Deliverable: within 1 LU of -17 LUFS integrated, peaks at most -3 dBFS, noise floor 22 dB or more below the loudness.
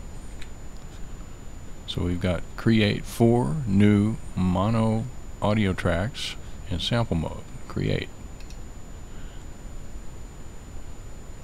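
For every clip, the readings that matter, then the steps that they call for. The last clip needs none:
steady tone 7 kHz; tone level -56 dBFS; noise floor -42 dBFS; noise floor target -47 dBFS; loudness -25.0 LUFS; peak level -7.5 dBFS; loudness target -17.0 LUFS
-> band-stop 7 kHz, Q 30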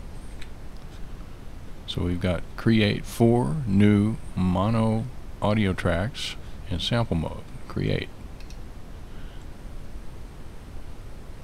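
steady tone not found; noise floor -42 dBFS; noise floor target -47 dBFS
-> noise print and reduce 6 dB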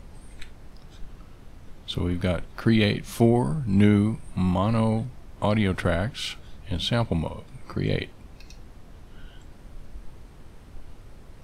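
noise floor -47 dBFS; loudness -25.0 LUFS; peak level -8.0 dBFS; loudness target -17.0 LUFS
-> trim +8 dB; peak limiter -3 dBFS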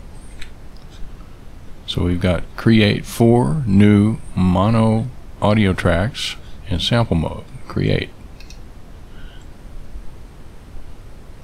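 loudness -17.0 LUFS; peak level -3.0 dBFS; noise floor -39 dBFS

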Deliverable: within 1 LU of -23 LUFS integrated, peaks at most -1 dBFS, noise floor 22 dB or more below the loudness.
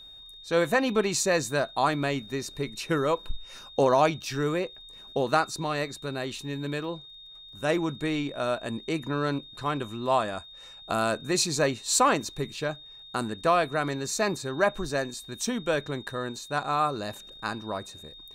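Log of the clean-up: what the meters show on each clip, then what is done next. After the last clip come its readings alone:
tick rate 23 per s; steady tone 3.7 kHz; tone level -45 dBFS; loudness -28.0 LUFS; peak level -10.5 dBFS; loudness target -23.0 LUFS
-> de-click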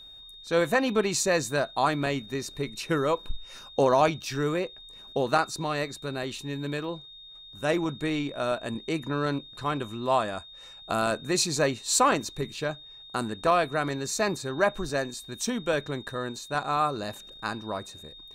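tick rate 0.054 per s; steady tone 3.7 kHz; tone level -45 dBFS
-> band-stop 3.7 kHz, Q 30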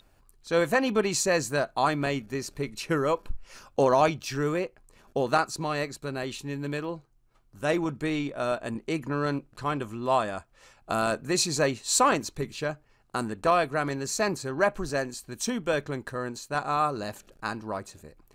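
steady tone not found; loudness -28.0 LUFS; peak level -10.5 dBFS; loudness target -23.0 LUFS
-> trim +5 dB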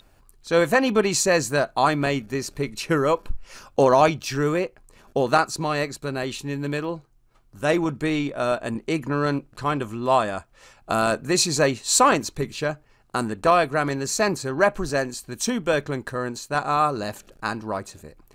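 loudness -23.0 LUFS; peak level -5.5 dBFS; noise floor -58 dBFS

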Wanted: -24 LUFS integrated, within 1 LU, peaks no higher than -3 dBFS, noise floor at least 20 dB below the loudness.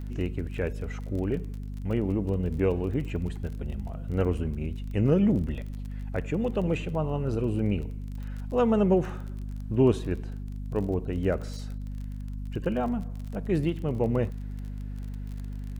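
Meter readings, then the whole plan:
tick rate 28 per s; hum 50 Hz; highest harmonic 250 Hz; hum level -32 dBFS; loudness -29.5 LUFS; peak level -11.5 dBFS; loudness target -24.0 LUFS
-> de-click; de-hum 50 Hz, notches 5; trim +5.5 dB

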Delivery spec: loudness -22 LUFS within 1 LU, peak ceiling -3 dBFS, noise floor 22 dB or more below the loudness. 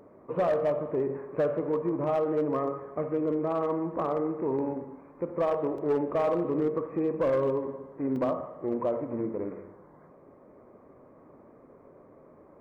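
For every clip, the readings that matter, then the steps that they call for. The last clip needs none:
clipped samples 0.7%; clipping level -20.5 dBFS; dropouts 2; longest dropout 2.9 ms; loudness -29.5 LUFS; peak level -20.5 dBFS; loudness target -22.0 LUFS
-> clip repair -20.5 dBFS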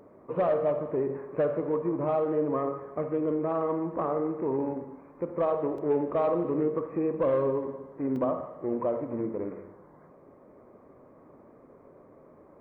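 clipped samples 0.0%; dropouts 2; longest dropout 2.9 ms
-> interpolate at 5.78/8.16 s, 2.9 ms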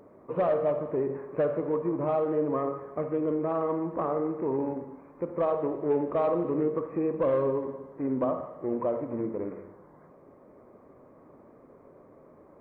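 dropouts 0; loudness -29.5 LUFS; peak level -15.5 dBFS; loudness target -22.0 LUFS
-> trim +7.5 dB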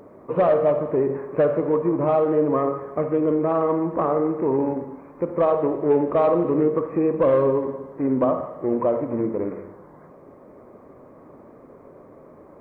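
loudness -22.0 LUFS; peak level -8.0 dBFS; noise floor -48 dBFS

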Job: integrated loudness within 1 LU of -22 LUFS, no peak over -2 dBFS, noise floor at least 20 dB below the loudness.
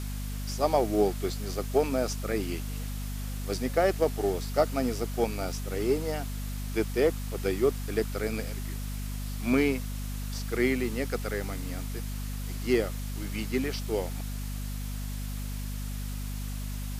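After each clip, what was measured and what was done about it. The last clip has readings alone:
hum 50 Hz; highest harmonic 250 Hz; hum level -32 dBFS; noise floor -34 dBFS; noise floor target -51 dBFS; loudness -30.5 LUFS; peak level -11.0 dBFS; loudness target -22.0 LUFS
-> hum notches 50/100/150/200/250 Hz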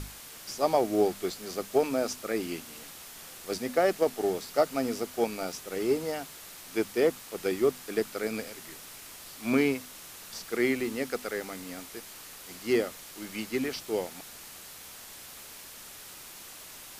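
hum not found; noise floor -47 dBFS; noise floor target -51 dBFS
-> noise reduction 6 dB, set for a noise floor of -47 dBFS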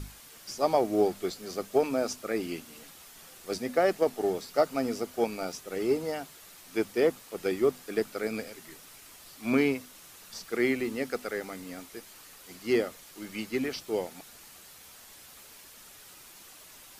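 noise floor -52 dBFS; loudness -30.5 LUFS; peak level -11.5 dBFS; loudness target -22.0 LUFS
-> trim +8.5 dB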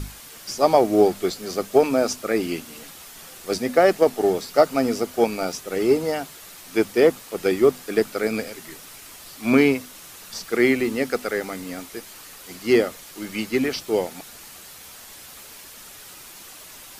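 loudness -22.0 LUFS; peak level -3.0 dBFS; noise floor -43 dBFS

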